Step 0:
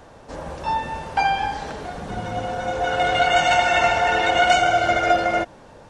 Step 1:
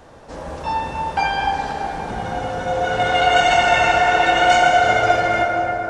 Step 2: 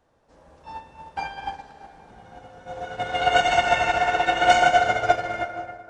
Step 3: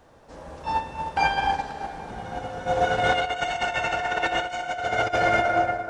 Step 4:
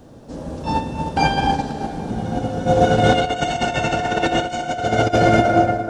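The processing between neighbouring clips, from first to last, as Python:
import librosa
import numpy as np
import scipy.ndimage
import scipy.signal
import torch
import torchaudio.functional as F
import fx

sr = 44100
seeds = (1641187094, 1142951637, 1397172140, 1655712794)

y1 = fx.rev_plate(x, sr, seeds[0], rt60_s=4.3, hf_ratio=0.45, predelay_ms=0, drr_db=0.0)
y2 = fx.upward_expand(y1, sr, threshold_db=-25.0, expansion=2.5)
y3 = fx.over_compress(y2, sr, threshold_db=-30.0, ratio=-1.0)
y3 = F.gain(torch.from_numpy(y3), 5.0).numpy()
y4 = fx.graphic_eq(y3, sr, hz=(125, 250, 1000, 2000), db=(6, 9, -6, -8))
y4 = F.gain(torch.from_numpy(y4), 8.5).numpy()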